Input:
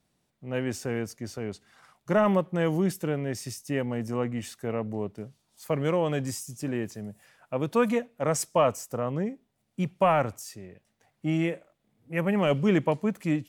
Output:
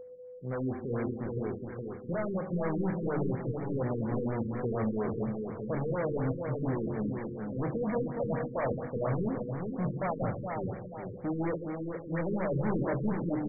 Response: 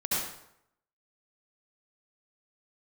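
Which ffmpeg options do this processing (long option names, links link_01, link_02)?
-filter_complex "[0:a]asettb=1/sr,asplit=3[link_01][link_02][link_03];[link_01]atrim=end=1.274[link_04];[link_02]atrim=start=1.27:end=2.61,asetpts=PTS-STARTPTS,afade=type=in:duration=0.004:curve=qsin,afade=type=out:start_time=1.336:duration=0.004:curve=qsin,acompressor=threshold=-38dB:ratio=2[link_05];[link_03]atrim=start=2.606[link_06];[link_04][link_05]acrossfade=duration=0.004:curve1=hsin:curve2=qsin[link_07];[link_07][link_06]acrossfade=duration=0.004:curve1=qsin:curve2=hsin,bandreject=frequency=50:width_type=h:width=6,bandreject=frequency=100:width_type=h:width=6,bandreject=frequency=150:width_type=h:width=6,bandreject=frequency=200:width_type=h:width=6,bandreject=frequency=250:width_type=h:width=6,bandreject=frequency=300:width_type=h:width=6,bandreject=frequency=350:width_type=h:width=6,dynaudnorm=framelen=270:gausssize=9:maxgain=5dB,asoftclip=type=hard:threshold=-31.5dB,aeval=exprs='val(0)+0.00708*sin(2*PI*500*n/s)':channel_layout=same,asplit=2[link_08][link_09];[link_09]adelay=23,volume=-9.5dB[link_10];[link_08][link_10]amix=inputs=2:normalize=0,aecho=1:1:415|830|1245|1660|2075|2490:0.562|0.253|0.114|0.0512|0.0231|0.0104,asplit=2[link_11][link_12];[1:a]atrim=start_sample=2205[link_13];[link_12][link_13]afir=irnorm=-1:irlink=0,volume=-15.5dB[link_14];[link_11][link_14]amix=inputs=2:normalize=0,afftfilt=real='re*lt(b*sr/1024,480*pow(2400/480,0.5+0.5*sin(2*PI*4.2*pts/sr)))':imag='im*lt(b*sr/1024,480*pow(2400/480,0.5+0.5*sin(2*PI*4.2*pts/sr)))':win_size=1024:overlap=0.75"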